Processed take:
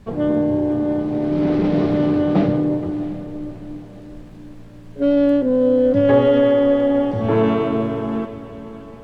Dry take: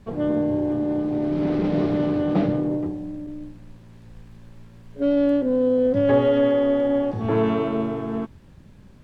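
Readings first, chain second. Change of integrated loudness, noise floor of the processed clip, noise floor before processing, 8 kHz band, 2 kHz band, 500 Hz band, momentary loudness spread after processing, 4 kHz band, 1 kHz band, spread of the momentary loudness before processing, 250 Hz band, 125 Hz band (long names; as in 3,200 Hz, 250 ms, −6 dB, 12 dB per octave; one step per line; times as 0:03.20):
+4.0 dB, −39 dBFS, −48 dBFS, can't be measured, +4.0 dB, +4.0 dB, 17 LU, +4.0 dB, +4.0 dB, 12 LU, +4.0 dB, +4.5 dB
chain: feedback delay with all-pass diffusion 657 ms, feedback 44%, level −14 dB
level +4 dB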